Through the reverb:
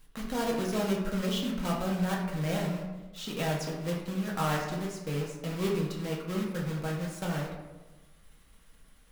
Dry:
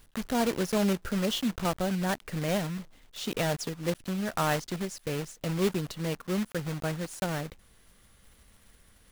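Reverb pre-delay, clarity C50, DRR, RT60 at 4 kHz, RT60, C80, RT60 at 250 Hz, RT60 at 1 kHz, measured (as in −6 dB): 4 ms, 3.5 dB, −3.0 dB, 0.55 s, 1.2 s, 6.0 dB, 1.3 s, 1.1 s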